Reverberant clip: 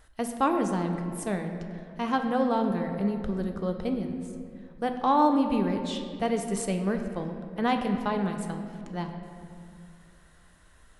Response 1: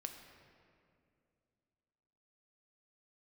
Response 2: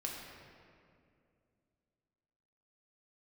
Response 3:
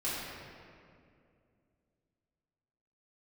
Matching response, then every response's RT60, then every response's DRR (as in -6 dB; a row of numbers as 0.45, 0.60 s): 1; 2.4, 2.4, 2.4 s; 4.5, -2.5, -11.5 dB